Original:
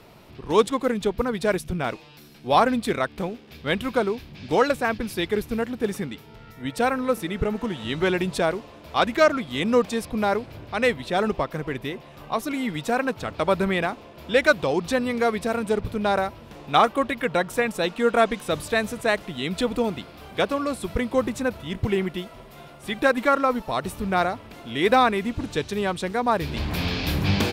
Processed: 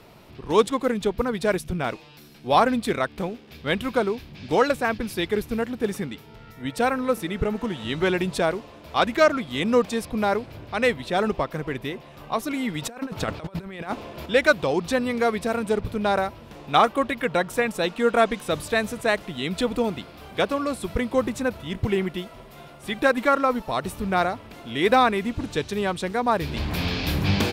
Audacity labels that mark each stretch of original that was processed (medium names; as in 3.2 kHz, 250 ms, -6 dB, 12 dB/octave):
12.820000	14.260000	compressor with a negative ratio -30 dBFS, ratio -0.5